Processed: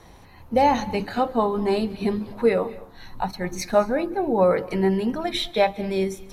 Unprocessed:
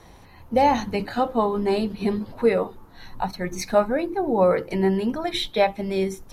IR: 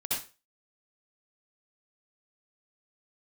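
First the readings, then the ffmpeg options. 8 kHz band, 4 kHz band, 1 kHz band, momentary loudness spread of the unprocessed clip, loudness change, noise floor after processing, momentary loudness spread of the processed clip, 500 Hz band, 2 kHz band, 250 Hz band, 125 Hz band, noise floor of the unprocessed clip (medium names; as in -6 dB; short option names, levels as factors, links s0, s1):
0.0 dB, 0.0 dB, 0.0 dB, 8 LU, 0.0 dB, -48 dBFS, 9 LU, 0.0 dB, 0.0 dB, 0.0 dB, 0.0 dB, -48 dBFS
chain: -filter_complex "[0:a]asplit=2[s0][s1];[1:a]atrim=start_sample=2205,adelay=135[s2];[s1][s2]afir=irnorm=-1:irlink=0,volume=0.0631[s3];[s0][s3]amix=inputs=2:normalize=0"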